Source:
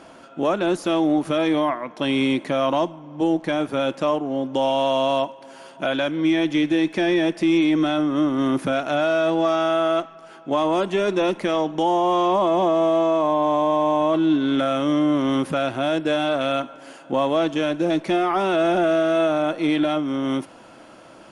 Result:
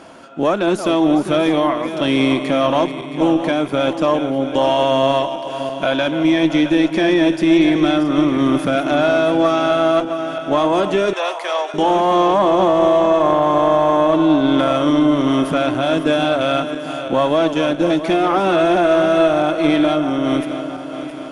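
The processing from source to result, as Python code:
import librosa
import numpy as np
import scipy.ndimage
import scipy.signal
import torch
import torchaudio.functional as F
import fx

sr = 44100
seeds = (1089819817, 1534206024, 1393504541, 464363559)

y = fx.reverse_delay_fb(x, sr, ms=335, feedback_pct=69, wet_db=-10.0)
y = fx.cheby_harmonics(y, sr, harmonics=(2,), levels_db=(-16,), full_scale_db=-7.5)
y = fx.highpass(y, sr, hz=600.0, slope=24, at=(11.13, 11.74))
y = F.gain(torch.from_numpy(y), 4.5).numpy()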